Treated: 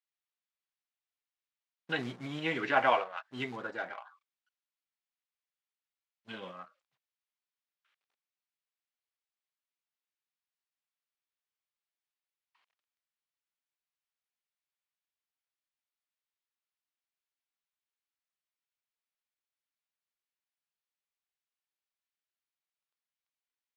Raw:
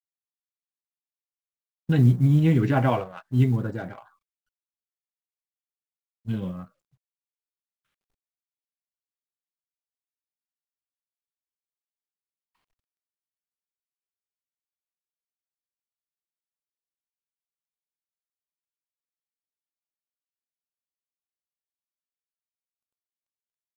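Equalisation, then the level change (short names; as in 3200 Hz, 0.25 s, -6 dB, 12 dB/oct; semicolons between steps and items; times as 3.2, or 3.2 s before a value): BPF 670–2900 Hz; high shelf 2300 Hz +10.5 dB; 0.0 dB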